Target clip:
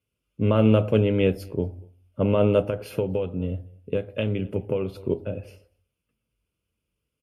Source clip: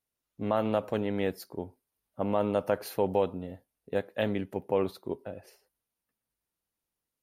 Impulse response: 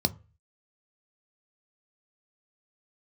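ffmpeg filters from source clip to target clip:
-filter_complex "[0:a]asplit=2[s0][s1];[s1]adelay=239.1,volume=0.0398,highshelf=f=4000:g=-5.38[s2];[s0][s2]amix=inputs=2:normalize=0,asplit=3[s3][s4][s5];[s3]afade=t=out:st=2.6:d=0.02[s6];[s4]acompressor=threshold=0.0282:ratio=6,afade=t=in:st=2.6:d=0.02,afade=t=out:st=4.91:d=0.02[s7];[s5]afade=t=in:st=4.91:d=0.02[s8];[s6][s7][s8]amix=inputs=3:normalize=0[s9];[1:a]atrim=start_sample=2205,asetrate=26019,aresample=44100[s10];[s9][s10]afir=irnorm=-1:irlink=0,volume=0.447"

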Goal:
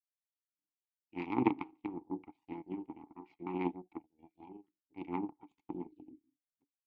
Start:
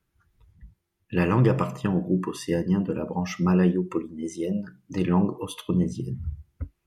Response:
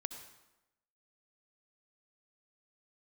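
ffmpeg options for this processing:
-filter_complex "[0:a]afftfilt=real='re*between(b*sr/4096,100,4800)':imag='im*between(b*sr/4096,100,4800)':win_size=4096:overlap=0.75,aeval=exprs='0.422*(cos(1*acos(clip(val(0)/0.422,-1,1)))-cos(1*PI/2))+0.168*(cos(3*acos(clip(val(0)/0.422,-1,1)))-cos(3*PI/2))+0.0168*(cos(5*acos(clip(val(0)/0.422,-1,1)))-cos(5*PI/2))+0.00237*(cos(6*acos(clip(val(0)/0.422,-1,1)))-cos(6*PI/2))+0.00944*(cos(8*acos(clip(val(0)/0.422,-1,1)))-cos(8*PI/2))':c=same,asplit=3[s0][s1][s2];[s0]bandpass=f=300:t=q:w=8,volume=1[s3];[s1]bandpass=f=870:t=q:w=8,volume=0.501[s4];[s2]bandpass=f=2240:t=q:w=8,volume=0.355[s5];[s3][s4][s5]amix=inputs=3:normalize=0,volume=3.16"

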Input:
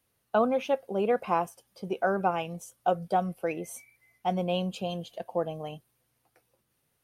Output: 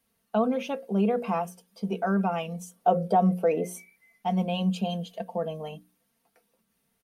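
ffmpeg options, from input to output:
-filter_complex "[0:a]asettb=1/sr,asplit=3[s0][s1][s2];[s0]atrim=end=2.734[s3];[s1]atrim=start=2.73:end=3.68,asetpts=PTS-STARTPTS,afade=t=in:d=0.004:c=qsin,afade=t=out:st=0.946:d=0.004:c=qsin,equalizer=f=470:t=o:w=2.2:g=11[s4];[s2]atrim=start=3.676[s5];[s3][s4]acrossfade=d=0.004:c1=hsin:c2=qsin[s6];[s6][s5]acrossfade=d=0.004:c1=qsin:c2=hsin,bandreject=f=60:t=h:w=6,bandreject=f=120:t=h:w=6,bandreject=f=180:t=h:w=6,bandreject=f=240:t=h:w=6,bandreject=f=300:t=h:w=6,bandreject=f=360:t=h:w=6,bandreject=f=420:t=h:w=6,bandreject=f=480:t=h:w=6,bandreject=f=540:t=h:w=6,aecho=1:1:4.4:0.6,asplit=2[s7][s8];[s8]alimiter=limit=0.0891:level=0:latency=1:release=45,volume=1.41[s9];[s7][s9]amix=inputs=2:normalize=0,equalizer=f=200:t=o:w=0.35:g=9.5,volume=0.398"

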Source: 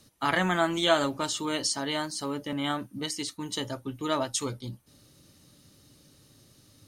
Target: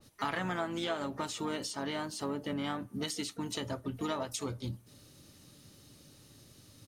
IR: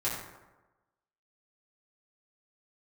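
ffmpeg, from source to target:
-filter_complex "[0:a]asplit=4[s0][s1][s2][s3];[s1]asetrate=29433,aresample=44100,atempo=1.49831,volume=0.224[s4];[s2]asetrate=35002,aresample=44100,atempo=1.25992,volume=0.158[s5];[s3]asetrate=66075,aresample=44100,atempo=0.66742,volume=0.158[s6];[s0][s4][s5][s6]amix=inputs=4:normalize=0,acompressor=threshold=0.0251:ratio=5,asplit=2[s7][s8];[1:a]atrim=start_sample=2205[s9];[s8][s9]afir=irnorm=-1:irlink=0,volume=0.0299[s10];[s7][s10]amix=inputs=2:normalize=0,adynamicequalizer=threshold=0.00316:dfrequency=2200:dqfactor=0.7:tfrequency=2200:tqfactor=0.7:attack=5:release=100:ratio=0.375:range=3:mode=cutabove:tftype=highshelf"

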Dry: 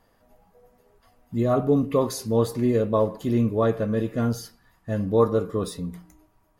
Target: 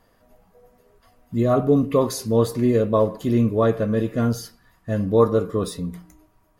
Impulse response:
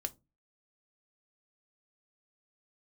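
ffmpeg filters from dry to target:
-af "bandreject=f=840:w=12,volume=1.41"

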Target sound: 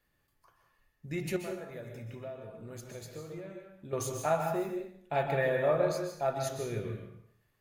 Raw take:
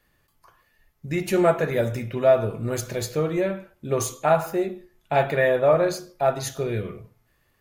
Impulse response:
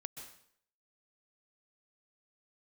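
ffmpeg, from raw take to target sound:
-filter_complex "[0:a]asettb=1/sr,asplit=3[s0][s1][s2];[s0]atrim=end=1.364[s3];[s1]atrim=start=1.36:end=3.93,asetpts=PTS-STARTPTS,afade=t=in:d=0.004:c=qsin,afade=t=out:st=2.566:d=0.004:c=qsin,acompressor=threshold=0.02:ratio=4[s4];[s2]atrim=start=3.926[s5];[s3][s4]acrossfade=d=0.004:c1=hsin:c2=qsin[s6];[s6][s5]acrossfade=d=0.004:c1=qsin:c2=hsin[s7];[1:a]atrim=start_sample=2205[s8];[s7][s8]afir=irnorm=-1:irlink=0,volume=0.531"

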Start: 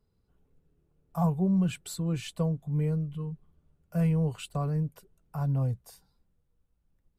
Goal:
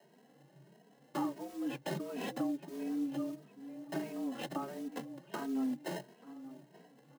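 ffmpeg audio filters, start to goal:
-filter_complex "[0:a]highshelf=f=3200:g=11.5,acrossover=split=4200[s0][s1];[s1]acompressor=threshold=0.00355:ratio=4:attack=1:release=60[s2];[s0][s2]amix=inputs=2:normalize=0,aemphasis=mode=production:type=75fm,acrossover=split=200|420|2400[s3][s4][s5][s6];[s6]acrusher=samples=39:mix=1:aa=0.000001[s7];[s3][s4][s5][s7]amix=inputs=4:normalize=0,asplit=2[s8][s9];[s9]adelay=882,lowpass=f=4900:p=1,volume=0.0708,asplit=2[s10][s11];[s11]adelay=882,lowpass=f=4900:p=1,volume=0.38,asplit=2[s12][s13];[s13]adelay=882,lowpass=f=4900:p=1,volume=0.38[s14];[s8][s10][s12][s14]amix=inputs=4:normalize=0,afreqshift=130,acrusher=bits=6:mode=log:mix=0:aa=0.000001,acompressor=threshold=0.0178:ratio=6,asplit=2[s15][s16];[s16]adelay=2.8,afreqshift=1.5[s17];[s15][s17]amix=inputs=2:normalize=1,volume=1.58"

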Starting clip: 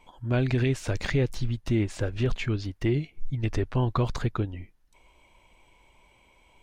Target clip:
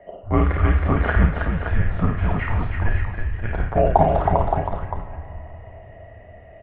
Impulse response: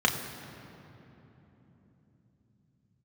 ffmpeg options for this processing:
-filter_complex "[0:a]equalizer=f=125:t=o:w=1:g=-10,equalizer=f=250:t=o:w=1:g=8,equalizer=f=1000:t=o:w=1:g=12,equalizer=f=2000:t=o:w=1:g=3,aecho=1:1:54|320|570:0.631|0.562|0.447,asplit=2[s0][s1];[1:a]atrim=start_sample=2205,highshelf=f=4700:g=7[s2];[s1][s2]afir=irnorm=-1:irlink=0,volume=0.2[s3];[s0][s3]amix=inputs=2:normalize=0,highpass=f=250:t=q:w=0.5412,highpass=f=250:t=q:w=1.307,lowpass=f=3000:t=q:w=0.5176,lowpass=f=3000:t=q:w=0.7071,lowpass=f=3000:t=q:w=1.932,afreqshift=-330,lowshelf=f=470:g=3,volume=0.891"

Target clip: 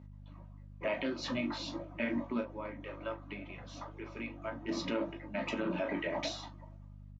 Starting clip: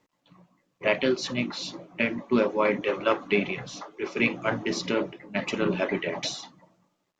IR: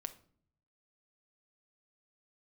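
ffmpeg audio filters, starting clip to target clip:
-filter_complex "[0:a]asplit=3[s0][s1][s2];[s0]afade=t=out:st=2.4:d=0.02[s3];[s1]acompressor=threshold=0.01:ratio=4,afade=t=in:st=2.4:d=0.02,afade=t=out:st=4.68:d=0.02[s4];[s2]afade=t=in:st=4.68:d=0.02[s5];[s3][s4][s5]amix=inputs=3:normalize=0,lowpass=f=1500:p=1,aecho=1:1:3.2:0.39,aeval=exprs='val(0)+0.00708*(sin(2*PI*50*n/s)+sin(2*PI*2*50*n/s)/2+sin(2*PI*3*50*n/s)/3+sin(2*PI*4*50*n/s)/4+sin(2*PI*5*50*n/s)/5)':c=same,highpass=f=180:p=1,aecho=1:1:18|38:0.376|0.251,alimiter=limit=0.0668:level=0:latency=1:release=123,equalizer=f=390:t=o:w=0.28:g=-10"

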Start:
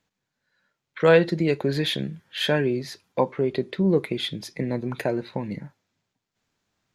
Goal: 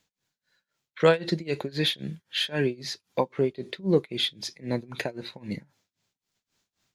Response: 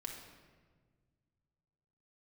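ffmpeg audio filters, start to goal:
-filter_complex "[0:a]acrossover=split=7100[s0][s1];[s1]acompressor=threshold=0.00112:ratio=4:attack=1:release=60[s2];[s0][s2]amix=inputs=2:normalize=0,acrossover=split=2900[s3][s4];[s4]aeval=exprs='0.106*sin(PI/2*1.58*val(0)/0.106)':c=same[s5];[s3][s5]amix=inputs=2:normalize=0,tremolo=f=3.8:d=0.94"

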